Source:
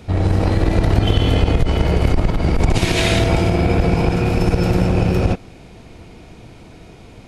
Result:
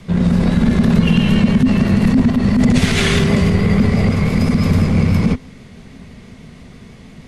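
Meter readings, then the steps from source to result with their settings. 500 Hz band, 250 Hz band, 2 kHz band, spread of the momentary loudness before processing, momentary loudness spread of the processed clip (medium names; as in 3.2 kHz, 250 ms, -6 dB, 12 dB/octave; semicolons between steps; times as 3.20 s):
-2.5 dB, +7.5 dB, +2.5 dB, 3 LU, 2 LU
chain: frequency shift -270 Hz; vibrato 6.1 Hz 38 cents; trim +2 dB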